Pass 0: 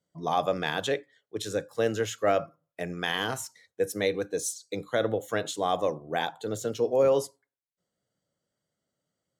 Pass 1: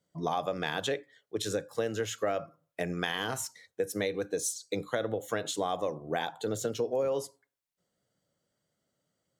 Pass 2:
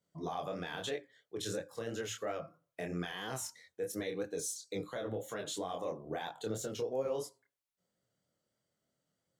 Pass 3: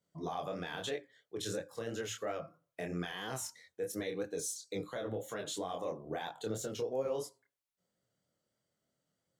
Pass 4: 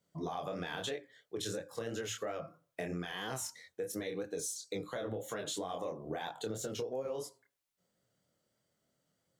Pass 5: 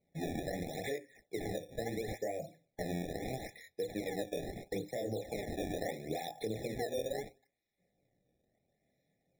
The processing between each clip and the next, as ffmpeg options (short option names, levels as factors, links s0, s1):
-af "acompressor=threshold=0.0282:ratio=5,volume=1.41"
-af "alimiter=level_in=1.06:limit=0.0631:level=0:latency=1:release=13,volume=0.944,flanger=delay=22.5:depth=4.8:speed=3,volume=0.891"
-af anull
-af "acompressor=threshold=0.0112:ratio=6,volume=1.58"
-filter_complex "[0:a]acrossover=split=7200[s0][s1];[s1]acompressor=threshold=0.00282:ratio=4:attack=1:release=60[s2];[s0][s2]amix=inputs=2:normalize=0,acrusher=samples=24:mix=1:aa=0.000001:lfo=1:lforange=38.4:lforate=0.75,afftfilt=real='re*eq(mod(floor(b*sr/1024/840),2),0)':imag='im*eq(mod(floor(b*sr/1024/840),2),0)':win_size=1024:overlap=0.75,volume=1.19"